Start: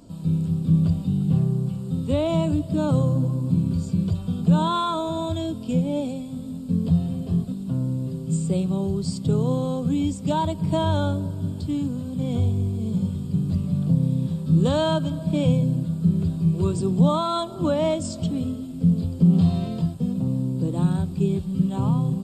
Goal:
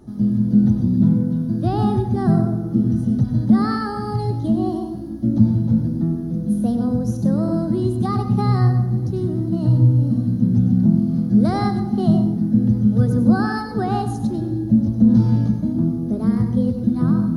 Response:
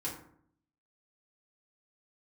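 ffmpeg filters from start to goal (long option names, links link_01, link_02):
-filter_complex "[0:a]asetrate=56448,aresample=44100,bass=frequency=250:gain=10,treble=frequency=4000:gain=-5,asplit=2[link_01][link_02];[1:a]atrim=start_sample=2205,adelay=94[link_03];[link_02][link_03]afir=irnorm=-1:irlink=0,volume=-8dB[link_04];[link_01][link_04]amix=inputs=2:normalize=0,volume=-2.5dB"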